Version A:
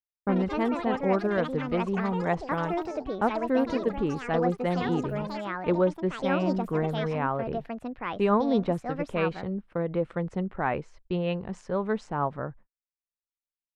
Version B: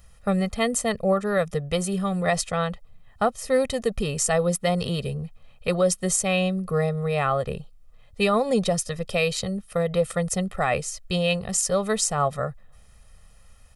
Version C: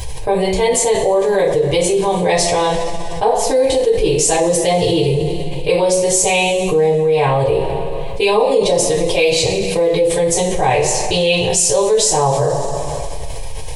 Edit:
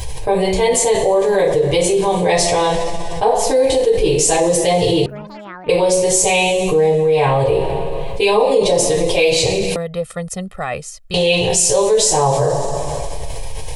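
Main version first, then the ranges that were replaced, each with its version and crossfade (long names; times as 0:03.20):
C
0:05.06–0:05.69: punch in from A
0:09.76–0:11.14: punch in from B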